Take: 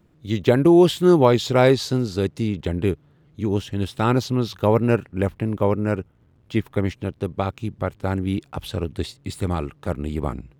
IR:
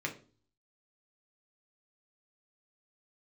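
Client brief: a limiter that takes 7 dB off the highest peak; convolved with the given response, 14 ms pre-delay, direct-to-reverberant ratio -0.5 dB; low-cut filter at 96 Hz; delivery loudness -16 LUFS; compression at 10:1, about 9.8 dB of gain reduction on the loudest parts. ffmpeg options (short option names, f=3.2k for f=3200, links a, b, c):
-filter_complex "[0:a]highpass=96,acompressor=threshold=-19dB:ratio=10,alimiter=limit=-14.5dB:level=0:latency=1,asplit=2[a][b];[1:a]atrim=start_sample=2205,adelay=14[c];[b][c]afir=irnorm=-1:irlink=0,volume=-3.5dB[d];[a][d]amix=inputs=2:normalize=0,volume=9dB"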